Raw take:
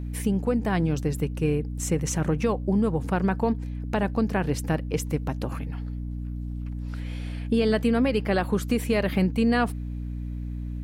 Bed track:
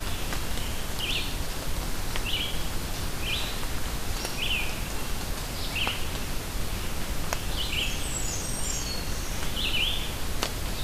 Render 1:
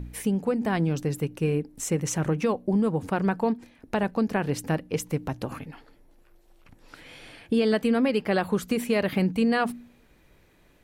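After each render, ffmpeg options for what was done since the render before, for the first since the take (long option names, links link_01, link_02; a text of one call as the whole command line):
ffmpeg -i in.wav -af "bandreject=frequency=60:width_type=h:width=4,bandreject=frequency=120:width_type=h:width=4,bandreject=frequency=180:width_type=h:width=4,bandreject=frequency=240:width_type=h:width=4,bandreject=frequency=300:width_type=h:width=4" out.wav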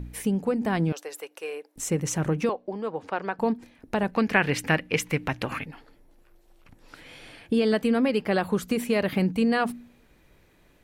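ffmpeg -i in.wav -filter_complex "[0:a]asettb=1/sr,asplit=3[link_01][link_02][link_03];[link_01]atrim=end=0.924[link_04];[link_02]atrim=start=0.92:end=1.76,asetpts=PTS-STARTPTS,afade=type=in:duration=0.004:curve=qsin,afade=type=out:start_time=0.836:duration=0.004:curve=qsin,highpass=frequency=520:width=0.5412,highpass=frequency=520:width=1.3066[link_05];[link_03]atrim=start=1.756[link_06];[link_04][link_05]acrossfade=duration=0.004:curve1=hsin:curve2=qsin[link_07];[link_07][link_06]acrossfade=duration=0.004:curve1=qsin:curve2=hsin,asettb=1/sr,asplit=3[link_08][link_09][link_10];[link_08]atrim=end=2.494[link_11];[link_09]atrim=start=2.49:end=3.39,asetpts=PTS-STARTPTS,afade=type=in:duration=0.004:curve=qsin,afade=type=out:start_time=0.896:duration=0.004:curve=qsin,acrossover=split=380 5700:gain=0.126 1 0.0794[link_12][link_13][link_14];[link_12][link_13][link_14]amix=inputs=3:normalize=0[link_15];[link_10]atrim=start=3.386[link_16];[link_11][link_15]acrossfade=duration=0.004:curve1=hsin:curve2=qsin[link_17];[link_17][link_16]acrossfade=duration=0.004:curve1=qsin:curve2=hsin,asplit=3[link_18][link_19][link_20];[link_18]afade=type=out:start_time=4.13:duration=0.02[link_21];[link_19]equalizer=frequency=2200:width_type=o:width=1.6:gain=14.5,afade=type=in:start_time=4.13:duration=0.02,afade=type=out:start_time=5.63:duration=0.02[link_22];[link_20]afade=type=in:start_time=5.63:duration=0.02[link_23];[link_21][link_22][link_23]amix=inputs=3:normalize=0" out.wav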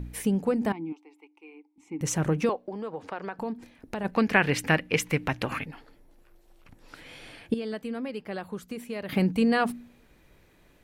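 ffmpeg -i in.wav -filter_complex "[0:a]asettb=1/sr,asplit=3[link_01][link_02][link_03];[link_01]atrim=end=0.724[link_04];[link_02]atrim=start=0.72:end=2.01,asetpts=PTS-STARTPTS,afade=type=in:duration=0.004:curve=qsin,afade=type=out:start_time=1.286:duration=0.004:curve=qsin,asplit=3[link_05][link_06][link_07];[link_05]bandpass=frequency=300:width_type=q:width=8,volume=0dB[link_08];[link_06]bandpass=frequency=870:width_type=q:width=8,volume=-6dB[link_09];[link_07]bandpass=frequency=2240:width_type=q:width=8,volume=-9dB[link_10];[link_08][link_09][link_10]amix=inputs=3:normalize=0[link_11];[link_03]atrim=start=2.006[link_12];[link_04][link_11]acrossfade=duration=0.004:curve1=hsin:curve2=qsin[link_13];[link_13][link_12]acrossfade=duration=0.004:curve1=qsin:curve2=hsin,asplit=3[link_14][link_15][link_16];[link_14]afade=type=out:start_time=2.63:duration=0.02[link_17];[link_15]acompressor=threshold=-32dB:ratio=2.5:attack=3.2:release=140:knee=1:detection=peak,afade=type=in:start_time=2.63:duration=0.02,afade=type=out:start_time=4.04:duration=0.02[link_18];[link_16]afade=type=in:start_time=4.04:duration=0.02[link_19];[link_17][link_18][link_19]amix=inputs=3:normalize=0,asplit=3[link_20][link_21][link_22];[link_20]atrim=end=7.542[link_23];[link_21]atrim=start=7.538:end=9.092,asetpts=PTS-STARTPTS,volume=-11dB[link_24];[link_22]atrim=start=9.088[link_25];[link_23][link_24]acrossfade=duration=0.004:curve1=hsin:curve2=hsin[link_26];[link_26][link_25]acrossfade=duration=0.004:curve1=hsin:curve2=hsin" out.wav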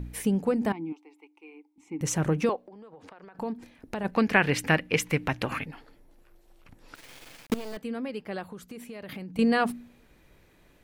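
ffmpeg -i in.wav -filter_complex "[0:a]asettb=1/sr,asplit=3[link_01][link_02][link_03];[link_01]atrim=end=2.564[link_04];[link_02]atrim=start=2.56:end=3.35,asetpts=PTS-STARTPTS,afade=type=in:duration=0.004:curve=qsin,afade=type=out:start_time=0.786:duration=0.004:curve=qsin,acompressor=threshold=-44dB:ratio=12:attack=3.2:release=140:knee=1:detection=peak[link_05];[link_03]atrim=start=3.346[link_06];[link_04][link_05]acrossfade=duration=0.004:curve1=hsin:curve2=qsin[link_07];[link_07][link_06]acrossfade=duration=0.004:curve1=qsin:curve2=hsin,asettb=1/sr,asplit=3[link_08][link_09][link_10];[link_08]atrim=end=6.954[link_11];[link_09]atrim=start=6.95:end=7.77,asetpts=PTS-STARTPTS,afade=type=in:duration=0.004:curve=qsin,afade=type=out:start_time=0.816:duration=0.004:curve=qsin,acrusher=bits=5:dc=4:mix=0:aa=0.000001[link_12];[link_10]atrim=start=7.766[link_13];[link_11][link_12]acrossfade=duration=0.004:curve1=hsin:curve2=qsin[link_14];[link_14][link_13]acrossfade=duration=0.004:curve1=qsin:curve2=hsin,asettb=1/sr,asplit=3[link_15][link_16][link_17];[link_15]atrim=end=8.434[link_18];[link_16]atrim=start=8.43:end=9.39,asetpts=PTS-STARTPTS,afade=type=in:duration=0.004:curve=qsin,afade=type=out:start_time=0.956:duration=0.004:curve=qsin,acompressor=threshold=-37dB:ratio=6:attack=3.2:release=140:knee=1:detection=peak[link_19];[link_17]atrim=start=9.386[link_20];[link_18][link_19]acrossfade=duration=0.004:curve1=hsin:curve2=qsin[link_21];[link_21][link_20]acrossfade=duration=0.004:curve1=qsin:curve2=hsin" out.wav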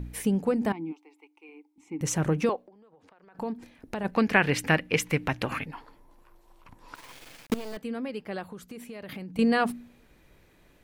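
ffmpeg -i in.wav -filter_complex "[0:a]asettb=1/sr,asplit=3[link_01][link_02][link_03];[link_01]atrim=end=0.914[link_04];[link_02]atrim=start=0.91:end=1.49,asetpts=PTS-STARTPTS,afade=type=in:duration=0.004:curve=qsin,afade=type=out:start_time=0.576:duration=0.004:curve=qsin,lowshelf=frequency=190:gain=-10.5[link_05];[link_03]atrim=start=1.486[link_06];[link_04][link_05]acrossfade=duration=0.004:curve1=hsin:curve2=qsin[link_07];[link_07][link_06]acrossfade=duration=0.004:curve1=qsin:curve2=hsin,asettb=1/sr,asplit=3[link_08][link_09][link_10];[link_08]atrim=end=5.734[link_11];[link_09]atrim=start=5.73:end=7.12,asetpts=PTS-STARTPTS,afade=type=in:duration=0.004:curve=qsin,afade=type=out:start_time=1.386:duration=0.004:curve=qsin,equalizer=frequency=1000:width_type=o:width=0.39:gain=15[link_12];[link_10]atrim=start=7.116[link_13];[link_11][link_12]acrossfade=duration=0.004:curve1=hsin:curve2=qsin[link_14];[link_14][link_13]acrossfade=duration=0.004:curve1=qsin:curve2=hsin,asplit=3[link_15][link_16][link_17];[link_15]atrim=end=2.73,asetpts=PTS-STARTPTS,afade=type=out:start_time=2.61:duration=0.12:silence=0.354813[link_18];[link_16]atrim=start=2.73:end=3.26,asetpts=PTS-STARTPTS,volume=-9dB[link_19];[link_17]atrim=start=3.26,asetpts=PTS-STARTPTS,afade=type=in:duration=0.12:silence=0.354813[link_20];[link_18][link_19][link_20]concat=n=3:v=0:a=1" out.wav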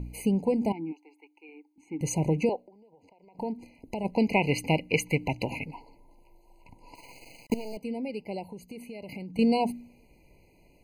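ffmpeg -i in.wav -af "afftfilt=real='re*eq(mod(floor(b*sr/1024/1000),2),0)':imag='im*eq(mod(floor(b*sr/1024/1000),2),0)':win_size=1024:overlap=0.75" out.wav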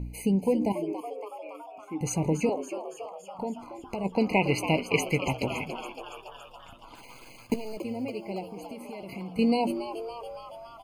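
ffmpeg -i in.wav -filter_complex "[0:a]asplit=2[link_01][link_02];[link_02]adelay=16,volume=-12dB[link_03];[link_01][link_03]amix=inputs=2:normalize=0,asplit=9[link_04][link_05][link_06][link_07][link_08][link_09][link_10][link_11][link_12];[link_05]adelay=281,afreqshift=110,volume=-10.5dB[link_13];[link_06]adelay=562,afreqshift=220,volume=-14.4dB[link_14];[link_07]adelay=843,afreqshift=330,volume=-18.3dB[link_15];[link_08]adelay=1124,afreqshift=440,volume=-22.1dB[link_16];[link_09]adelay=1405,afreqshift=550,volume=-26dB[link_17];[link_10]adelay=1686,afreqshift=660,volume=-29.9dB[link_18];[link_11]adelay=1967,afreqshift=770,volume=-33.8dB[link_19];[link_12]adelay=2248,afreqshift=880,volume=-37.6dB[link_20];[link_04][link_13][link_14][link_15][link_16][link_17][link_18][link_19][link_20]amix=inputs=9:normalize=0" out.wav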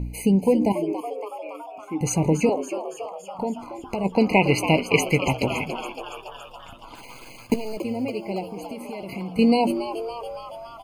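ffmpeg -i in.wav -af "volume=6dB" out.wav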